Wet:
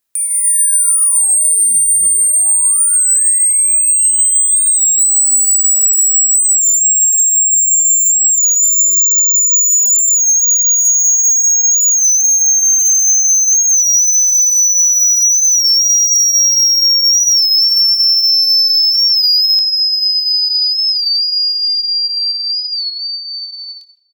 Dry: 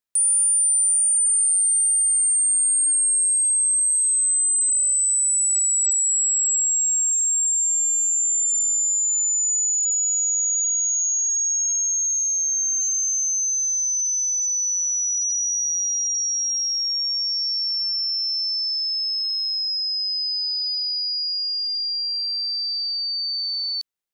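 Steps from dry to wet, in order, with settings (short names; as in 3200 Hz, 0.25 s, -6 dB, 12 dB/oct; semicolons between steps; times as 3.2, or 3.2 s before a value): ending faded out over 7.70 s; soft clip -22 dBFS, distortion -15 dB; doubler 25 ms -11 dB; reverb RT60 1.1 s, pre-delay 49 ms, DRR 13.5 dB; compressor 10:1, threshold -32 dBFS, peak gain reduction 11.5 dB; high shelf 7300 Hz +7.5 dB, from 19.59 s -2 dB; speakerphone echo 0.16 s, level -21 dB; AGC gain up to 11 dB; maximiser +16.5 dB; record warp 33 1/3 rpm, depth 100 cents; gain -6 dB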